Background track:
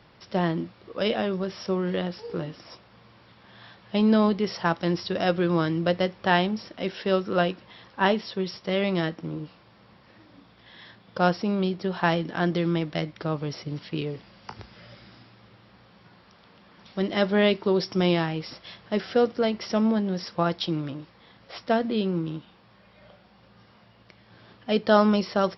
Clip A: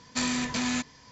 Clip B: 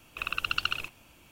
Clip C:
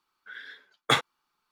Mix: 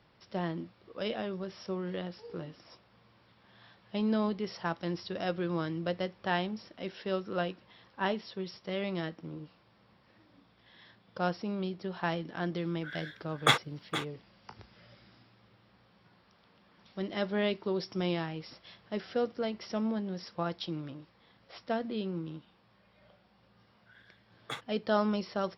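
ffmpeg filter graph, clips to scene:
ffmpeg -i bed.wav -i cue0.wav -i cue1.wav -i cue2.wav -filter_complex "[3:a]asplit=2[link_01][link_02];[0:a]volume=-9.5dB[link_03];[link_01]aecho=1:1:467:0.266,atrim=end=1.51,asetpts=PTS-STARTPTS,volume=-1dB,afade=type=in:duration=0.004:curve=hsin,afade=type=out:start_time=1.506:duration=0.004:curve=hsin,adelay=12570[link_04];[link_02]atrim=end=1.51,asetpts=PTS-STARTPTS,volume=-17dB,afade=type=in:duration=0.004:curve=hsin,afade=type=out:start_time=1.506:duration=0.004:curve=hsin,adelay=23600[link_05];[link_03][link_04][link_05]amix=inputs=3:normalize=0" out.wav

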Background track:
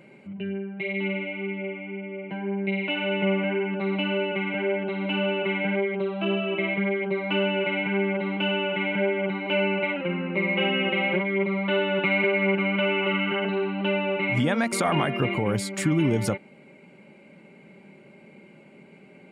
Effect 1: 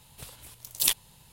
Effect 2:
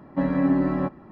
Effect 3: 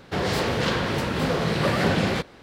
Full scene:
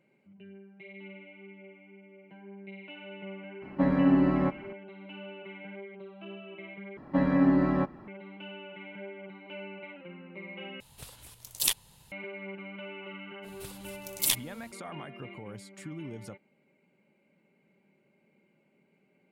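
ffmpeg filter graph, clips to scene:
ffmpeg -i bed.wav -i cue0.wav -i cue1.wav -filter_complex "[2:a]asplit=2[link_01][link_02];[1:a]asplit=2[link_03][link_04];[0:a]volume=-18.5dB[link_05];[link_02]equalizer=frequency=3300:width_type=o:width=2.2:gain=3.5[link_06];[link_03]equalizer=frequency=15000:width=1.6:gain=-4.5[link_07];[link_04]acontrast=39[link_08];[link_05]asplit=3[link_09][link_10][link_11];[link_09]atrim=end=6.974[link_12];[link_06]atrim=end=1.11,asetpts=PTS-STARTPTS,volume=-2dB[link_13];[link_10]atrim=start=8.076:end=10.804[link_14];[link_07]atrim=end=1.32,asetpts=PTS-STARTPTS,volume=-2dB[link_15];[link_11]atrim=start=12.116[link_16];[link_01]atrim=end=1.11,asetpts=PTS-STARTPTS,volume=-1.5dB,afade=type=in:duration=0.004:curve=hsin,afade=type=out:start_time=1.106:duration=0.004:curve=hsin,adelay=3620[link_17];[link_08]atrim=end=1.32,asetpts=PTS-STARTPTS,volume=-7dB,afade=type=in:duration=0.05,afade=type=out:start_time=1.27:duration=0.05,adelay=13420[link_18];[link_12][link_13]acrossfade=duration=0.004:curve1=hsin:curve2=hsin[link_19];[link_19][link_14]acrossfade=duration=0.004:curve1=hsin:curve2=hsin[link_20];[link_20][link_15]acrossfade=duration=0.004:curve1=hsin:curve2=hsin[link_21];[link_21][link_16]acrossfade=duration=0.004:curve1=hsin:curve2=hsin[link_22];[link_22][link_17][link_18]amix=inputs=3:normalize=0" out.wav

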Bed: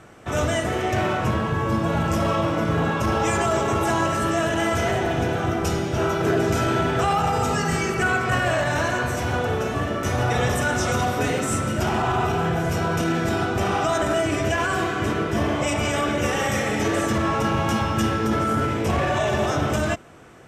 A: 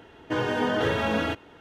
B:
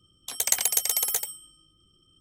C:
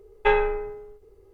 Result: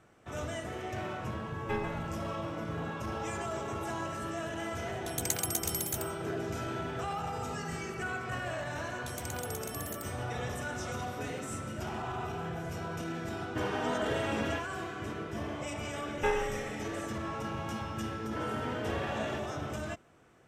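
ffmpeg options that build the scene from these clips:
ffmpeg -i bed.wav -i cue0.wav -i cue1.wav -i cue2.wav -filter_complex "[3:a]asplit=2[link_01][link_02];[2:a]asplit=2[link_03][link_04];[1:a]asplit=2[link_05][link_06];[0:a]volume=-15dB[link_07];[link_01]aecho=1:1:142:0.422[link_08];[link_04]acompressor=threshold=-29dB:ratio=6:attack=3.2:release=140:knee=1:detection=peak[link_09];[link_08]atrim=end=1.33,asetpts=PTS-STARTPTS,volume=-15.5dB,afade=type=in:duration=0.004:curve=hsin,afade=type=out:start_time=1.326:duration=0.004:curve=hsin,adelay=1440[link_10];[link_03]atrim=end=2.2,asetpts=PTS-STARTPTS,volume=-9.5dB,afade=type=in:duration=0.004:curve=hsin,afade=type=out:start_time=2.196:duration=0.004:curve=hsin,adelay=4780[link_11];[link_09]atrim=end=2.2,asetpts=PTS-STARTPTS,volume=-10dB,afade=type=in:duration=0.004:curve=hsin,afade=type=out:start_time=2.196:duration=0.004:curve=hsin,adelay=8780[link_12];[link_05]atrim=end=1.6,asetpts=PTS-STARTPTS,volume=-8.5dB,afade=type=in:duration=0.004:curve=hsin,afade=type=out:start_time=1.596:duration=0.004:curve=hsin,adelay=13250[link_13];[link_02]atrim=end=1.33,asetpts=PTS-STARTPTS,volume=-10dB,afade=type=in:duration=0.004:curve=hsin,afade=type=out:start_time=1.326:duration=0.004:curve=hsin,adelay=15980[link_14];[link_06]atrim=end=1.6,asetpts=PTS-STARTPTS,volume=-12.5dB,afade=type=in:duration=0.004:curve=hsin,afade=type=out:start_time=1.596:duration=0.004:curve=hsin,adelay=18050[link_15];[link_07][link_10][link_11][link_12][link_13][link_14][link_15]amix=inputs=7:normalize=0" out.wav

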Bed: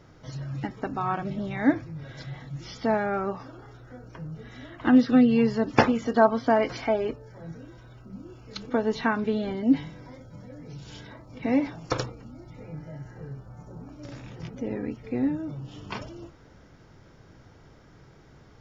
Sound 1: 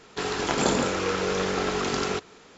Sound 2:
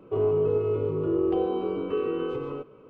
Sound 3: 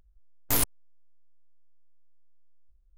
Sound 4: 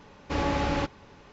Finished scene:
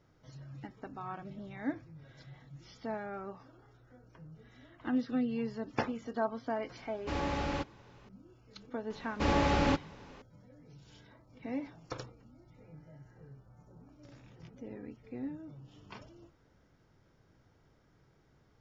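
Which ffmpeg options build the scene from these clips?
ffmpeg -i bed.wav -i cue0.wav -i cue1.wav -i cue2.wav -i cue3.wav -filter_complex "[4:a]asplit=2[link_01][link_02];[0:a]volume=-14dB[link_03];[link_01]atrim=end=1.32,asetpts=PTS-STARTPTS,volume=-7dB,afade=type=in:duration=0.004:curve=hsin,afade=type=out:start_time=1.316:duration=0.004:curve=hsin,adelay=6770[link_04];[link_02]atrim=end=1.32,asetpts=PTS-STARTPTS,volume=-1dB,afade=type=in:duration=0.004:curve=hsin,afade=type=out:start_time=1.316:duration=0.004:curve=hsin,adelay=392490S[link_05];[link_03][link_04][link_05]amix=inputs=3:normalize=0" out.wav

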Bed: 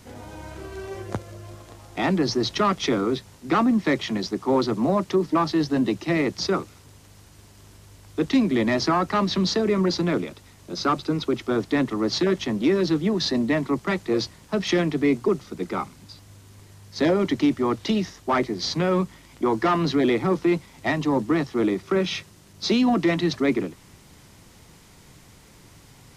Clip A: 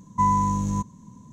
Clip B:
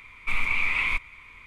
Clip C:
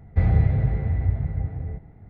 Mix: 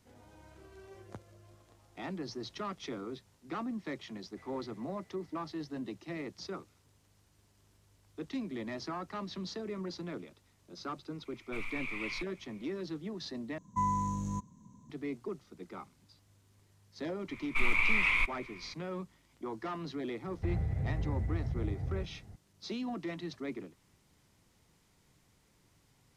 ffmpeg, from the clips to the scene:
ffmpeg -i bed.wav -i cue0.wav -i cue1.wav -i cue2.wav -filter_complex "[3:a]asplit=2[link_01][link_02];[2:a]asplit=2[link_03][link_04];[0:a]volume=-18dB[link_05];[link_01]aderivative[link_06];[link_03]highshelf=frequency=3400:gain=5.5[link_07];[link_02]acompressor=threshold=-24dB:ratio=6:attack=3.2:release=140:knee=1:detection=peak[link_08];[link_05]asplit=2[link_09][link_10];[link_09]atrim=end=13.584[link_11];[1:a]atrim=end=1.32,asetpts=PTS-STARTPTS,volume=-10.5dB[link_12];[link_10]atrim=start=14.896[link_13];[link_06]atrim=end=2.09,asetpts=PTS-STARTPTS,volume=-9dB,afade=type=in:duration=0.004:curve=hsin,afade=type=out:start_time=2.086:duration=0.004:curve=hsin,adelay=4200[link_14];[link_07]atrim=end=1.46,asetpts=PTS-STARTPTS,volume=-16.5dB,afade=type=in:duration=0.004:curve=hsin,afade=type=out:start_time=1.456:duration=0.004:curve=hsin,adelay=11250[link_15];[link_04]atrim=end=1.46,asetpts=PTS-STARTPTS,volume=-3dB,afade=type=in:duration=0.004:curve=hsin,afade=type=out:start_time=1.456:duration=0.004:curve=hsin,adelay=17280[link_16];[link_08]atrim=end=2.09,asetpts=PTS-STARTPTS,volume=-5.5dB,afade=type=in:duration=0.004:curve=hsin,afade=type=out:start_time=2.086:duration=0.004:curve=hsin,adelay=20270[link_17];[link_11][link_12]acrossfade=duration=0.004:curve1=hsin:curve2=hsin[link_18];[link_18][link_13]acrossfade=duration=0.004:curve1=hsin:curve2=hsin[link_19];[link_19][link_14][link_15][link_16][link_17]amix=inputs=5:normalize=0" out.wav

